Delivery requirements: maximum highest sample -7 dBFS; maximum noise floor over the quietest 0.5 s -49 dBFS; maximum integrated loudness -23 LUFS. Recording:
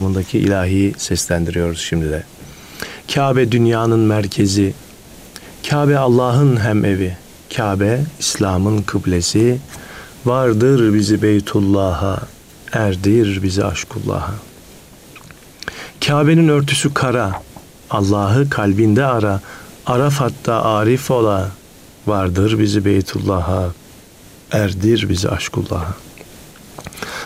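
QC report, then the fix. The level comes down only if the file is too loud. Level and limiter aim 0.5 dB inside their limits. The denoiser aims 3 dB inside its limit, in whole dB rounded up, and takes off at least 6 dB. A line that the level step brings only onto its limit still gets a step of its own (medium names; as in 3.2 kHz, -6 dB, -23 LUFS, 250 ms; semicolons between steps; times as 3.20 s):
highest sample -3.0 dBFS: fail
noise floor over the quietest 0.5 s -42 dBFS: fail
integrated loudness -16.0 LUFS: fail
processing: trim -7.5 dB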